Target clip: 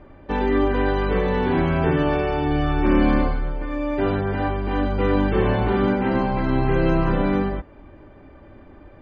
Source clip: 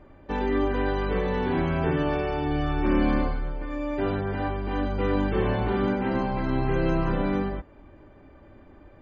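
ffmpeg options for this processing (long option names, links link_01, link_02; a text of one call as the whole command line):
ffmpeg -i in.wav -af "lowpass=5200,volume=5dB" out.wav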